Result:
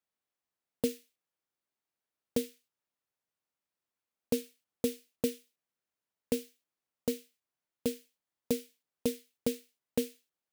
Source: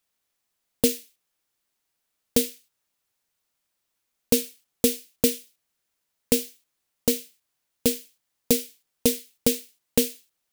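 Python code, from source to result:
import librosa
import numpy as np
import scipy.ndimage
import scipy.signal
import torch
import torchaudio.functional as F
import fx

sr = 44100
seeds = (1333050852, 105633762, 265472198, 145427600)

y = fx.highpass(x, sr, hz=110.0, slope=6)
y = fx.high_shelf(y, sr, hz=2500.0, db=-10.0)
y = y * librosa.db_to_amplitude(-7.5)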